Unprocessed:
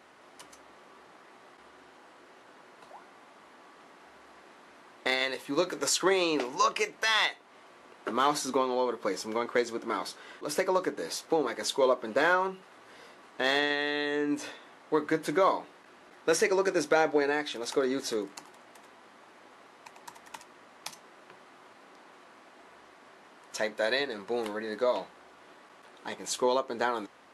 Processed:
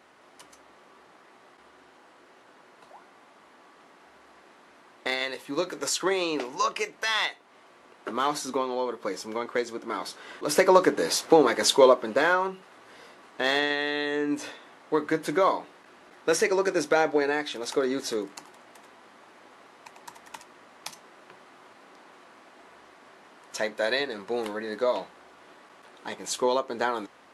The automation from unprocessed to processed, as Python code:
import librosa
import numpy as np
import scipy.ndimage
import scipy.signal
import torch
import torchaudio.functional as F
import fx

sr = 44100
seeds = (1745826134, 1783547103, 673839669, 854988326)

y = fx.gain(x, sr, db=fx.line((9.9, -0.5), (10.72, 9.5), (11.75, 9.5), (12.25, 2.0)))